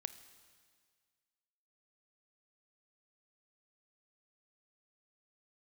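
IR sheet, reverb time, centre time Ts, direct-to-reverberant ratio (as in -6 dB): 1.8 s, 10 ms, 12.0 dB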